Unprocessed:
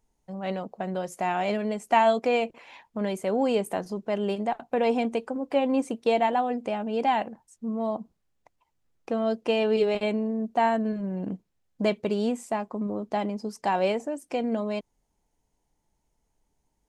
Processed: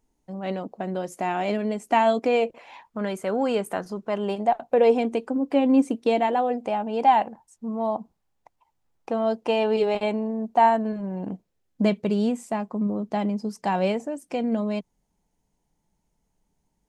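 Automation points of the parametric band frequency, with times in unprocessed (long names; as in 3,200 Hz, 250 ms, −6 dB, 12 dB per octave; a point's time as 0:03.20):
parametric band +8 dB 0.64 octaves
0:02.24 290 Hz
0:02.97 1,400 Hz
0:03.94 1,400 Hz
0:05.26 280 Hz
0:06.16 280 Hz
0:06.70 860 Hz
0:11.30 860 Hz
0:11.92 180 Hz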